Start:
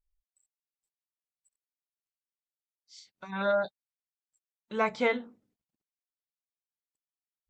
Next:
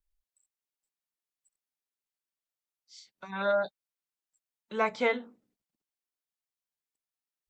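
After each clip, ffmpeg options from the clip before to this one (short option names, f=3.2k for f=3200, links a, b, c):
-filter_complex "[0:a]equalizer=f=90:t=o:w=1.2:g=-5.5,acrossover=split=200|630[a][b][c];[a]alimiter=level_in=22dB:limit=-24dB:level=0:latency=1:release=390,volume=-22dB[d];[d][b][c]amix=inputs=3:normalize=0"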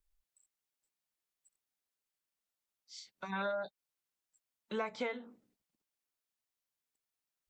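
-af "acompressor=threshold=-35dB:ratio=12,volume=1.5dB"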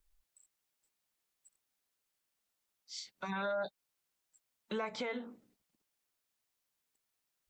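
-af "alimiter=level_in=10.5dB:limit=-24dB:level=0:latency=1:release=74,volume=-10.5dB,volume=5.5dB"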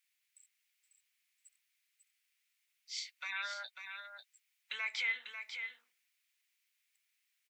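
-af "highpass=f=2.2k:t=q:w=3.3,aecho=1:1:545:0.422,volume=1.5dB"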